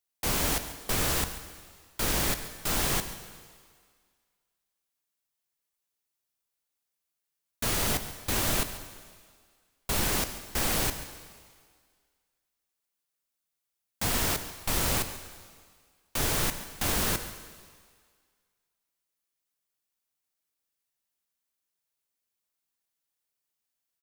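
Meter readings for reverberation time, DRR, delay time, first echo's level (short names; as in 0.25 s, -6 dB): 1.9 s, 9.0 dB, 0.14 s, -15.0 dB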